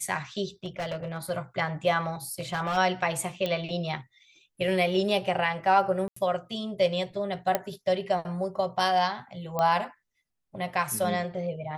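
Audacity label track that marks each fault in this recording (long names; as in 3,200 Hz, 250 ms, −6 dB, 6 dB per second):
0.640000	1.310000	clipping −28 dBFS
2.400000	2.780000	clipping −24 dBFS
3.460000	3.460000	click −16 dBFS
6.080000	6.160000	drop-out 84 ms
7.550000	7.550000	click −10 dBFS
9.590000	9.590000	click −15 dBFS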